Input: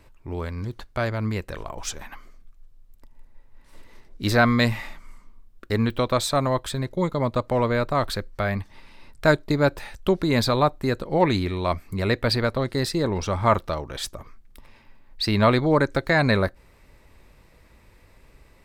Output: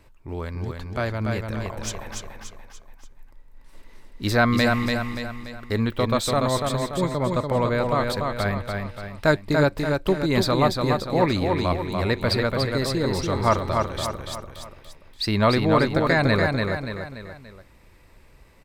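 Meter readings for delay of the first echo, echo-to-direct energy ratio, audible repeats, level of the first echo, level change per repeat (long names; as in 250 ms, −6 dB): 289 ms, −3.0 dB, 4, −4.0 dB, −6.5 dB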